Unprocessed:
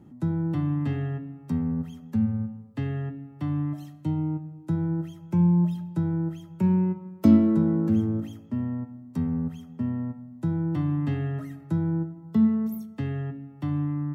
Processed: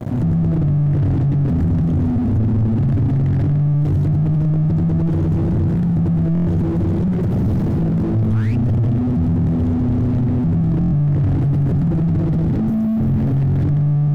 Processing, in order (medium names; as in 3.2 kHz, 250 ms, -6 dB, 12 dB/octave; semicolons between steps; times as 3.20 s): inverted gate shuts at -16 dBFS, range -42 dB; repeats whose band climbs or falls 420 ms, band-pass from 400 Hz, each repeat 1.4 oct, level -9.5 dB; reverberation RT60 2.6 s, pre-delay 77 ms, DRR -3.5 dB; waveshaping leveller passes 3; painted sound rise, 8.27–8.56 s, 940–2800 Hz -16 dBFS; Chebyshev band-stop 620–1600 Hz, order 2; compression 3:1, threshold -28 dBFS, peak gain reduction 11.5 dB; fifteen-band graphic EQ 100 Hz +10 dB, 400 Hz -6 dB, 2.5 kHz -11 dB; waveshaping leveller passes 5; buffer glitch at 6.33/10.79 s, samples 1024, times 5; slew-rate limiter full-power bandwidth 24 Hz; trim +3 dB